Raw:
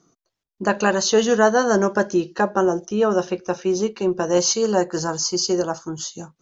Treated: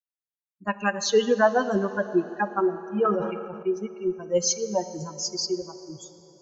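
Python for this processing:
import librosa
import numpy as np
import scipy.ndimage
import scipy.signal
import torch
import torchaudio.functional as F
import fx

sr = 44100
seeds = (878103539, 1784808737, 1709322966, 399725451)

y = fx.bin_expand(x, sr, power=3.0)
y = fx.rev_plate(y, sr, seeds[0], rt60_s=3.9, hf_ratio=0.7, predelay_ms=0, drr_db=12.0)
y = fx.sustainer(y, sr, db_per_s=39.0, at=(2.94, 3.63))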